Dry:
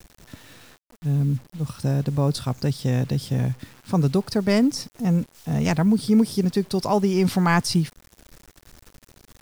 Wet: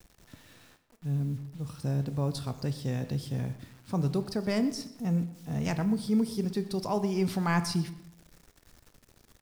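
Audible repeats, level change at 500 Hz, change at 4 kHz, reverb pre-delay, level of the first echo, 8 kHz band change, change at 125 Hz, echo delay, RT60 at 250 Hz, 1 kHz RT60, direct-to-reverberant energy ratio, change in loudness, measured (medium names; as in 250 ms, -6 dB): 1, -8.5 dB, -8.5 dB, 17 ms, -18.5 dB, -9.0 dB, -8.5 dB, 123 ms, 0.90 s, 0.85 s, 10.5 dB, -8.5 dB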